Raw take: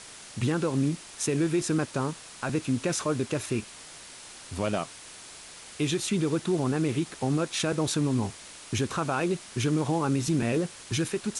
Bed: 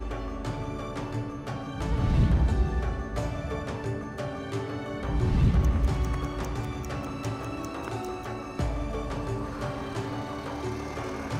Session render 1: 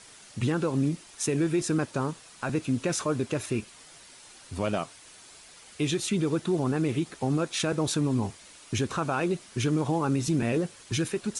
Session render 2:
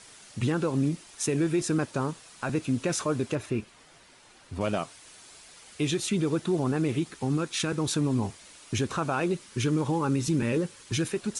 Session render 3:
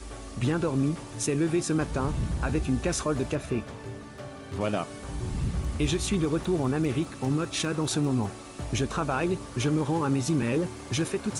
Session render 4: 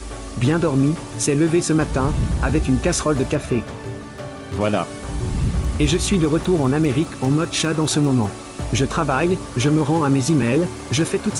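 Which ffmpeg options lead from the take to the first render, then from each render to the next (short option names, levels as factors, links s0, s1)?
-af "afftdn=nr=7:nf=-46"
-filter_complex "[0:a]asettb=1/sr,asplit=3[s0][s1][s2];[s0]atrim=end=3.354[s3];[s1]atrim=start=3.35:end=4.61,asetpts=PTS-STARTPTS,afade=t=in:d=0.004:c=qsin,afade=t=out:st=1.256:d=0.004:c=qsin,highshelf=f=4000:g=-11[s4];[s2]atrim=start=4.606[s5];[s3][s4]acrossfade=d=0.004:c1=hsin:c2=qsin[s6];[s6][s5]acrossfade=d=0.004:c1=qsin:c2=hsin,asettb=1/sr,asplit=3[s7][s8][s9];[s7]atrim=end=7.074[s10];[s8]atrim=start=7.07:end=7.92,asetpts=PTS-STARTPTS,afade=t=in:d=0.004:c=qsin,afade=t=out:st=0.846:d=0.004:c=qsin,equalizer=f=630:t=o:w=0.61:g=-8.5[s11];[s9]atrim=start=7.916[s12];[s10][s11]acrossfade=d=0.004:c1=hsin:c2=qsin[s13];[s13][s12]acrossfade=d=0.004:c1=qsin:c2=hsin,asettb=1/sr,asplit=3[s14][s15][s16];[s14]atrim=end=9.334[s17];[s15]atrim=start=9.33:end=10.92,asetpts=PTS-STARTPTS,afade=t=in:d=0.004:c=qsin,afade=t=out:st=1.586:d=0.004:c=qsin,asuperstop=centerf=690:order=4:qfactor=4.6[s18];[s16]atrim=start=10.916[s19];[s17][s18]acrossfade=d=0.004:c1=hsin:c2=qsin[s20];[s20][s19]acrossfade=d=0.004:c1=qsin:c2=hsin"
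-filter_complex "[1:a]volume=0.422[s0];[0:a][s0]amix=inputs=2:normalize=0"
-af "volume=2.66"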